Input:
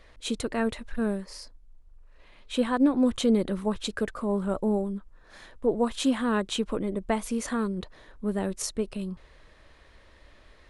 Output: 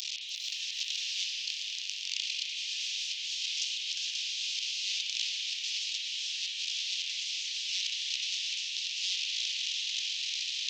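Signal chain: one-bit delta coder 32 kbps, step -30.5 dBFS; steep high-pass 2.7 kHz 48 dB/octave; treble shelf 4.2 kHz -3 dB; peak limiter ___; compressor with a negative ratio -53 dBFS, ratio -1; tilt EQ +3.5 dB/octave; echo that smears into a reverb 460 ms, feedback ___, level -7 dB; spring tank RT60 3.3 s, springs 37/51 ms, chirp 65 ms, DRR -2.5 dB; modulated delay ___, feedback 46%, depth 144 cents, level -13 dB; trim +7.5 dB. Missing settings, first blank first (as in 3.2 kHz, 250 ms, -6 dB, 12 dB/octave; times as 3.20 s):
-33 dBFS, 66%, 296 ms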